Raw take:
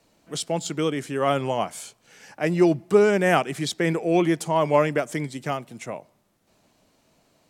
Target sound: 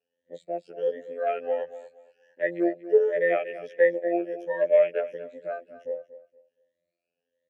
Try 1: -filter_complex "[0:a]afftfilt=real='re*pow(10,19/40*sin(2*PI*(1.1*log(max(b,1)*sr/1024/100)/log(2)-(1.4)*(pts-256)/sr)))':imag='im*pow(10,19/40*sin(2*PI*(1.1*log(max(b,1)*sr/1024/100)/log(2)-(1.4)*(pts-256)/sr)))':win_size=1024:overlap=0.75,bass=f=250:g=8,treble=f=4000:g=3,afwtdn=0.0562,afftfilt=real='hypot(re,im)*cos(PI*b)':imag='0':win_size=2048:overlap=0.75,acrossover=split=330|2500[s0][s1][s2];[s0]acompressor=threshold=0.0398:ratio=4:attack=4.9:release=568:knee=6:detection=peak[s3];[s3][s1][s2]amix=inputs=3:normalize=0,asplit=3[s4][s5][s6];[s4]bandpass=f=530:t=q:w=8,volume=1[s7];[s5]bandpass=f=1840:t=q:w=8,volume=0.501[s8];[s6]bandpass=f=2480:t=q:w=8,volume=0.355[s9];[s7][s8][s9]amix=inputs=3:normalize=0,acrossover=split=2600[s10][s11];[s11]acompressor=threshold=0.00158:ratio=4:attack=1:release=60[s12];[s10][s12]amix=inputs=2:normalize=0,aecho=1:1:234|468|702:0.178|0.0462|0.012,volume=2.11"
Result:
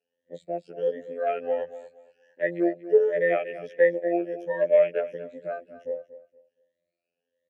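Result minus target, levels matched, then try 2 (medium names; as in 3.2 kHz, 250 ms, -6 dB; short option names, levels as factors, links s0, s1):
compression: peak gain reduction -9 dB
-filter_complex "[0:a]afftfilt=real='re*pow(10,19/40*sin(2*PI*(1.1*log(max(b,1)*sr/1024/100)/log(2)-(1.4)*(pts-256)/sr)))':imag='im*pow(10,19/40*sin(2*PI*(1.1*log(max(b,1)*sr/1024/100)/log(2)-(1.4)*(pts-256)/sr)))':win_size=1024:overlap=0.75,bass=f=250:g=8,treble=f=4000:g=3,afwtdn=0.0562,afftfilt=real='hypot(re,im)*cos(PI*b)':imag='0':win_size=2048:overlap=0.75,acrossover=split=330|2500[s0][s1][s2];[s0]acompressor=threshold=0.01:ratio=4:attack=4.9:release=568:knee=6:detection=peak[s3];[s3][s1][s2]amix=inputs=3:normalize=0,asplit=3[s4][s5][s6];[s4]bandpass=f=530:t=q:w=8,volume=1[s7];[s5]bandpass=f=1840:t=q:w=8,volume=0.501[s8];[s6]bandpass=f=2480:t=q:w=8,volume=0.355[s9];[s7][s8][s9]amix=inputs=3:normalize=0,acrossover=split=2600[s10][s11];[s11]acompressor=threshold=0.00158:ratio=4:attack=1:release=60[s12];[s10][s12]amix=inputs=2:normalize=0,aecho=1:1:234|468|702:0.178|0.0462|0.012,volume=2.11"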